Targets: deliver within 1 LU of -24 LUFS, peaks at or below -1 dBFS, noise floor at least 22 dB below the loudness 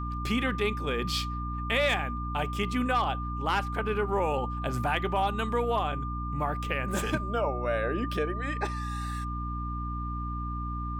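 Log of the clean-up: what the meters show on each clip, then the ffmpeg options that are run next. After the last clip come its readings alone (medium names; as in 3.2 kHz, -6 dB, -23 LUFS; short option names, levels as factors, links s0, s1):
hum 60 Hz; highest harmonic 300 Hz; hum level -32 dBFS; steady tone 1.2 kHz; tone level -36 dBFS; loudness -30.0 LUFS; peak level -14.5 dBFS; loudness target -24.0 LUFS
-> -af "bandreject=f=60:t=h:w=6,bandreject=f=120:t=h:w=6,bandreject=f=180:t=h:w=6,bandreject=f=240:t=h:w=6,bandreject=f=300:t=h:w=6"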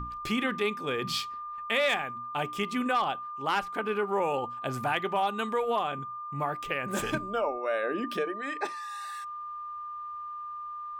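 hum not found; steady tone 1.2 kHz; tone level -36 dBFS
-> -af "bandreject=f=1200:w=30"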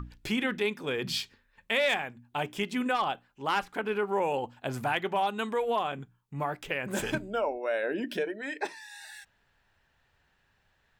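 steady tone not found; loudness -31.0 LUFS; peak level -15.5 dBFS; loudness target -24.0 LUFS
-> -af "volume=2.24"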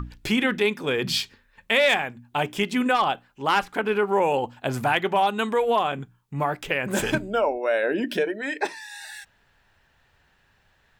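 loudness -24.0 LUFS; peak level -8.5 dBFS; noise floor -64 dBFS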